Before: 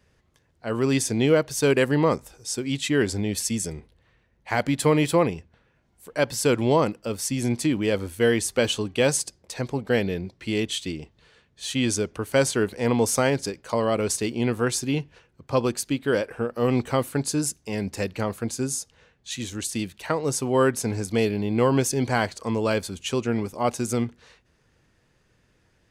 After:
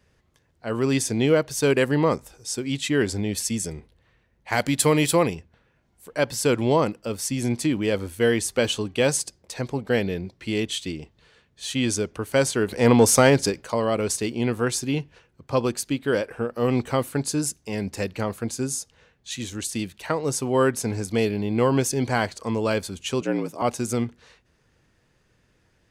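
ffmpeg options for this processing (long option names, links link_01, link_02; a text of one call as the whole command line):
ffmpeg -i in.wav -filter_complex "[0:a]asettb=1/sr,asplit=3[link_01][link_02][link_03];[link_01]atrim=end=4.524[link_04];[link_02]atrim=start=4.52:end=5.35,asetpts=PTS-STARTPTS,afade=type=in:duration=0.004:curve=qsin,afade=type=out:start_time=0.826:duration=0.004:curve=qsin,highshelf=frequency=3600:gain=9.5[link_05];[link_03]atrim=start=5.346[link_06];[link_04][link_05]acrossfade=duration=0.004:curve1=hsin:curve2=qsin[link_07];[link_07][link_06]acrossfade=duration=0.004:curve1=qsin:curve2=hsin,asplit=3[link_08][link_09][link_10];[link_08]afade=type=out:start_time=12.68:duration=0.02[link_11];[link_09]acontrast=64,afade=type=in:start_time=12.68:duration=0.02,afade=type=out:start_time=13.65:duration=0.02[link_12];[link_10]afade=type=in:start_time=13.65:duration=0.02[link_13];[link_11][link_12][link_13]amix=inputs=3:normalize=0,asettb=1/sr,asplit=3[link_14][link_15][link_16];[link_14]atrim=end=23.214[link_17];[link_15]atrim=start=23.21:end=23.62,asetpts=PTS-STARTPTS,afade=type=in:duration=0.004:curve=qsin,afade=type=out:start_time=0.406:duration=0.004:curve=qsin,afreqshift=68[link_18];[link_16]atrim=start=23.616[link_19];[link_17][link_18]acrossfade=duration=0.004:curve1=hsin:curve2=qsin[link_20];[link_20][link_19]acrossfade=duration=0.004:curve1=qsin:curve2=hsin" out.wav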